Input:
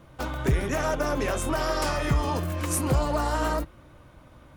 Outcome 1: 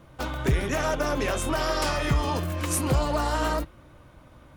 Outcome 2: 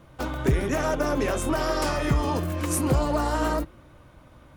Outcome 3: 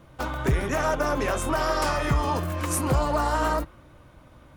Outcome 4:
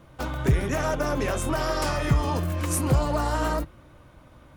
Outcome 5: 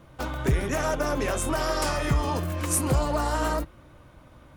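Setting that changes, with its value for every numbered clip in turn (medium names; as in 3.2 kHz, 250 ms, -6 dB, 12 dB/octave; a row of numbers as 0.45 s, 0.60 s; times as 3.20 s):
dynamic bell, frequency: 3.4 kHz, 310 Hz, 1.1 kHz, 120 Hz, 9 kHz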